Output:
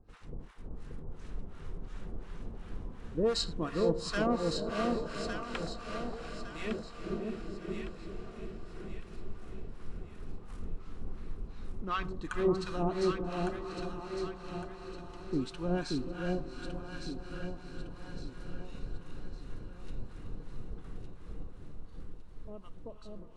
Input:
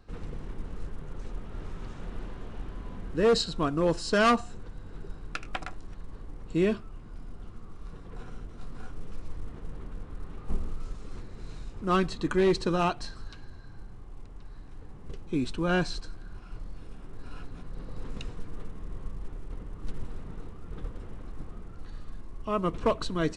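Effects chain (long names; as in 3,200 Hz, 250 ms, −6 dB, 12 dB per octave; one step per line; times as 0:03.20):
fade-out on the ending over 2.97 s
0:10.78–0:12.05: low-pass filter 4,200 Hz 12 dB per octave
0:21.56–0:22.93: gain on a spectral selection 970–2,600 Hz −7 dB
feedback delay with all-pass diffusion 516 ms, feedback 61%, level −7 dB
convolution reverb RT60 0.50 s, pre-delay 73 ms, DRR 17 dB
two-band tremolo in antiphase 2.8 Hz, depth 100%, crossover 870 Hz
delay that swaps between a low-pass and a high-pass 579 ms, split 920 Hz, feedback 62%, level −2 dB
level −3.5 dB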